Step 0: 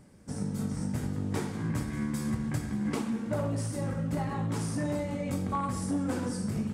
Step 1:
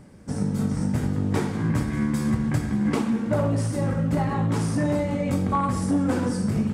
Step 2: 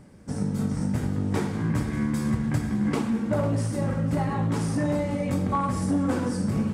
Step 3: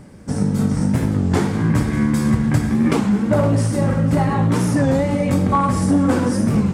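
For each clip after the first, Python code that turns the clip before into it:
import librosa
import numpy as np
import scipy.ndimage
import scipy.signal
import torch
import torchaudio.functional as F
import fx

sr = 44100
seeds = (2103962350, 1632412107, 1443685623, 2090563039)

y1 = fx.high_shelf(x, sr, hz=4800.0, db=-6.5)
y1 = F.gain(torch.from_numpy(y1), 8.0).numpy()
y2 = fx.echo_feedback(y1, sr, ms=499, feedback_pct=57, wet_db=-16.0)
y2 = F.gain(torch.from_numpy(y2), -2.0).numpy()
y3 = fx.record_warp(y2, sr, rpm=33.33, depth_cents=160.0)
y3 = F.gain(torch.from_numpy(y3), 8.5).numpy()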